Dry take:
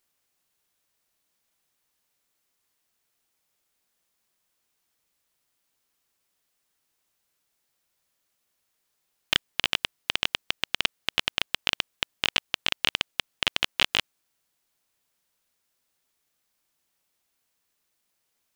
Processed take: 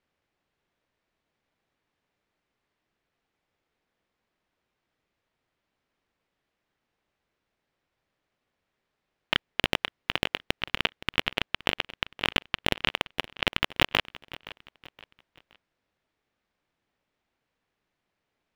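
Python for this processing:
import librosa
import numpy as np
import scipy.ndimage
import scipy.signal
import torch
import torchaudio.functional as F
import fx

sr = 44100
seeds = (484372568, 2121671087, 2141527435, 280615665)

p1 = scipy.signal.sosfilt(scipy.signal.butter(2, 2600.0, 'lowpass', fs=sr, output='sos'), x)
p2 = fx.sample_hold(p1, sr, seeds[0], rate_hz=1600.0, jitter_pct=0)
p3 = p1 + F.gain(torch.from_numpy(p2), -6.5).numpy()
p4 = fx.echo_feedback(p3, sr, ms=520, feedback_pct=38, wet_db=-18.0)
y = F.gain(torch.from_numpy(p4), 2.0).numpy()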